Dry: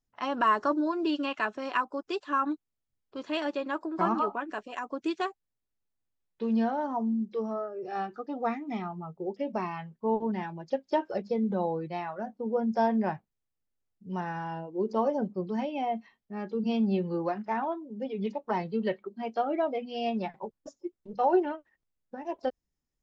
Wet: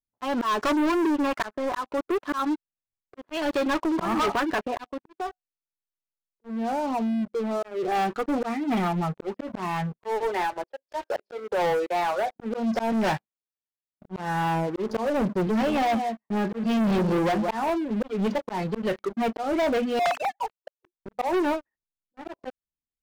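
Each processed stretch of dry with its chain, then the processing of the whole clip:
1.04–2.4 LPF 2000 Hz 24 dB/oct + low shelf 350 Hz -3.5 dB + hard clip -21.5 dBFS
4.84–7.63 compressor 16:1, threshold -28 dBFS + resonator 730 Hz, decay 0.18 s
9.99–12.36 steep high-pass 390 Hz + mismatched tape noise reduction encoder only
12.92–14.19 HPF 200 Hz 6 dB/oct + high shelf 2100 Hz +11 dB + Doppler distortion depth 0.25 ms
15.47–17.7 HPF 85 Hz + echo 0.173 s -12 dB
19.99–20.86 sine-wave speech + inverse Chebyshev high-pass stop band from 190 Hz, stop band 60 dB + high shelf 2500 Hz +10.5 dB
whole clip: low-pass opened by the level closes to 550 Hz, open at -25 dBFS; auto swell 0.302 s; sample leveller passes 5; gain -3.5 dB

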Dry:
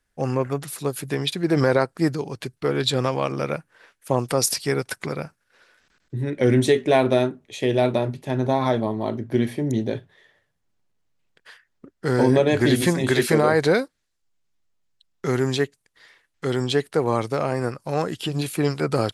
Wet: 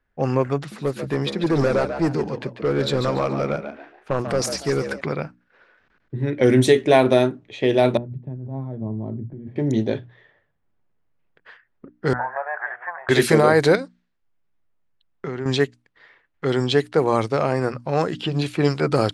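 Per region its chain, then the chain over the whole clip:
0.57–5.01 hard clip -18 dBFS + frequency-shifting echo 0.142 s, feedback 32%, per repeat +69 Hz, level -8.5 dB + dynamic EQ 3200 Hz, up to -6 dB, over -44 dBFS, Q 1.3
7.97–9.56 band-pass 130 Hz, Q 1.6 + negative-ratio compressor -32 dBFS
12.13–13.09 switching spikes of -23 dBFS + elliptic band-pass 700–1700 Hz, stop band 50 dB
13.75–15.46 steep low-pass 9400 Hz 96 dB/oct + compressor 4:1, threshold -28 dBFS
whole clip: notches 60/120/180/240/300 Hz; low-pass opened by the level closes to 2000 Hz, open at -14.5 dBFS; gain +3 dB

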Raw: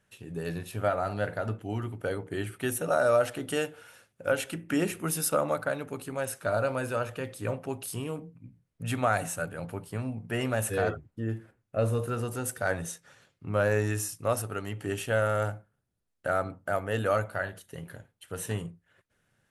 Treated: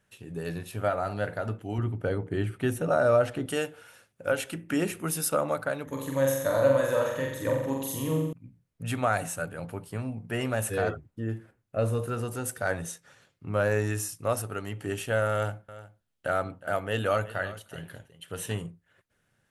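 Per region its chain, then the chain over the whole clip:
1.78–3.46 LPF 3800 Hz 6 dB/oct + low shelf 290 Hz +8 dB
5.85–8.33 ripple EQ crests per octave 1.1, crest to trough 12 dB + flutter echo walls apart 7.6 m, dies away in 0.86 s
15.32–18.55 bell 3100 Hz +6.5 dB 0.6 oct + echo 0.364 s -16.5 dB
whole clip: dry

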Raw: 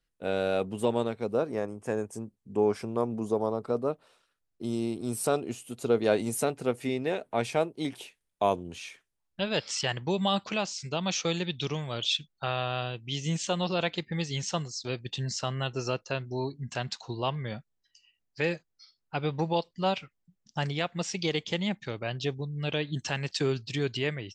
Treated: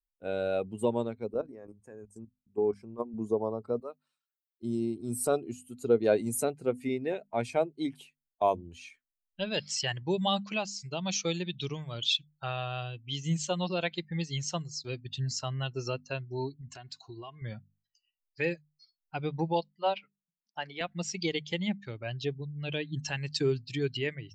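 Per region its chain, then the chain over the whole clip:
1.34–3.14 notches 60/120/180 Hz + level quantiser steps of 13 dB
3.8–4.63 HPF 990 Hz 6 dB/oct + high shelf 6100 Hz +3.5 dB
16.61–17.42 comb 2.8 ms, depth 49% + compressor 3:1, threshold -37 dBFS + HPF 44 Hz
19.72–20.81 three-band isolator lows -16 dB, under 260 Hz, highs -23 dB, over 5300 Hz + notches 60/120/180/240/300/360/420 Hz
whole clip: per-bin expansion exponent 1.5; notches 50/100/150/200/250 Hz; dynamic EQ 1300 Hz, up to -4 dB, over -52 dBFS, Q 2.1; gain +2 dB

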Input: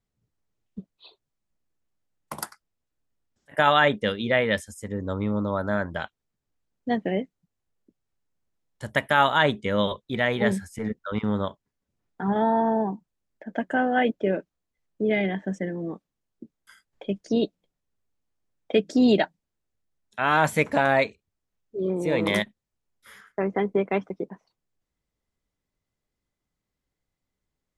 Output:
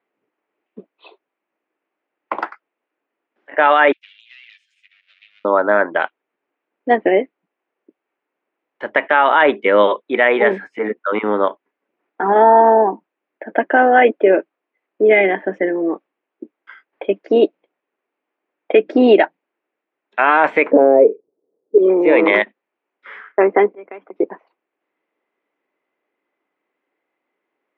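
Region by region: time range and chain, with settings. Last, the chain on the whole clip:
3.92–5.45 minimum comb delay 9 ms + inverse Chebyshev high-pass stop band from 1000 Hz, stop band 60 dB + compressor, threshold -47 dBFS
20.71–21.78 synth low-pass 460 Hz, resonance Q 5.1 + low shelf 250 Hz +11.5 dB
23.68–24.16 auto swell 0.7 s + compressor 10:1, threshold -42 dBFS
whole clip: Chebyshev band-pass 320–2500 Hz, order 3; maximiser +15.5 dB; gain -1 dB

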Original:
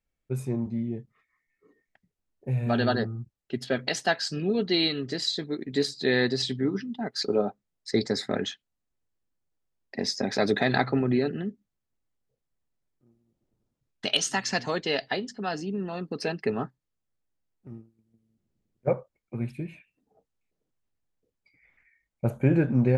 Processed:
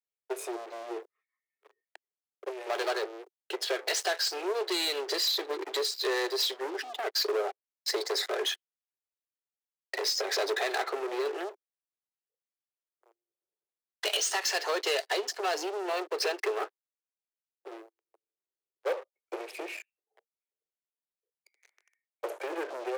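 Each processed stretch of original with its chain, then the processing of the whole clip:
5.81–6.79 HPF 45 Hz + three-band expander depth 100%
18.93–19.36 doubler 15 ms -10 dB + three-band squash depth 70%
whole clip: compressor 5:1, threshold -32 dBFS; sample leveller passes 5; steep high-pass 360 Hz 72 dB/oct; gain -5.5 dB

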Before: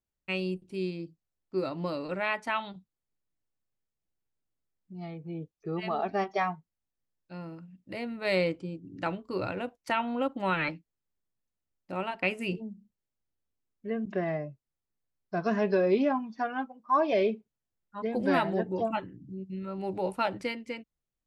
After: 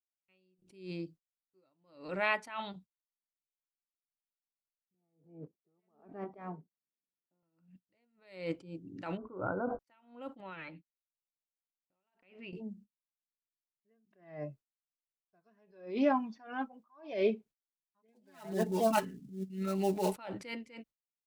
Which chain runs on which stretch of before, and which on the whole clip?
4.94–7.43 block floating point 5-bit + Butterworth band-pass 250 Hz, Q 0.86 + spectral compressor 2:1
9.17–9.79 brick-wall FIR low-pass 1600 Hz + sustainer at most 39 dB/s
10.4–12.53 steep low-pass 4200 Hz + compressor 12:1, threshold -41 dBFS
18.08–20.16 switching dead time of 0.079 ms + high shelf 3200 Hz +8.5 dB + comb 4.7 ms, depth 96%
whole clip: low shelf 140 Hz -6 dB; gate -54 dBFS, range -25 dB; attack slew limiter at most 120 dB/s

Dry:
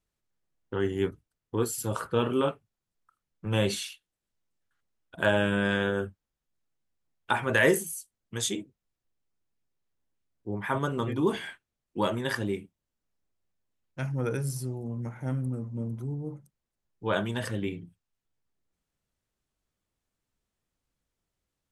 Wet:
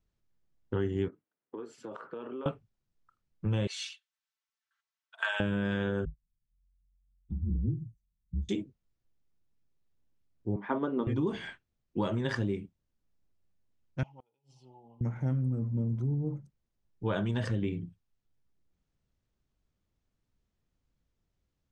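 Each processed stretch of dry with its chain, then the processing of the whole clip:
1.08–2.46 three-band isolator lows -22 dB, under 240 Hz, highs -18 dB, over 2700 Hz + compressor 8:1, threshold -38 dBFS + HPF 160 Hz
3.67–5.4 HPF 1000 Hz 24 dB/oct + comb 4.5 ms, depth 63%
6.05–8.49 inverse Chebyshev low-pass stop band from 630 Hz, stop band 50 dB + frequency shift -45 Hz
10.56–11.07 Chebyshev band-pass 250–4400 Hz, order 3 + tilt shelf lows +5.5 dB, about 1100 Hz + upward expander, over -36 dBFS
14.03–15.01 double band-pass 1600 Hz, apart 1.8 oct + flipped gate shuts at -41 dBFS, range -31 dB
whole clip: LPF 6900 Hz 24 dB/oct; low shelf 320 Hz +10 dB; compressor 6:1, threshold -24 dBFS; gain -2.5 dB

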